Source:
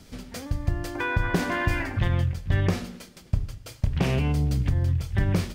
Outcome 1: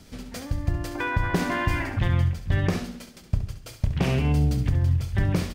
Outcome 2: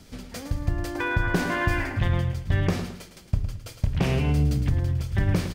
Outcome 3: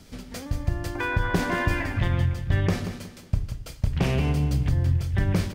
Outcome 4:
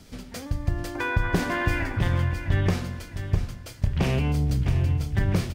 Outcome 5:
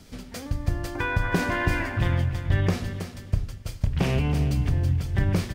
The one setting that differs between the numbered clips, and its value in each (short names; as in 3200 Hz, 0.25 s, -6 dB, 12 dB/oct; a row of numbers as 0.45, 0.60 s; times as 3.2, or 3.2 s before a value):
feedback echo, time: 68, 109, 183, 657, 323 ms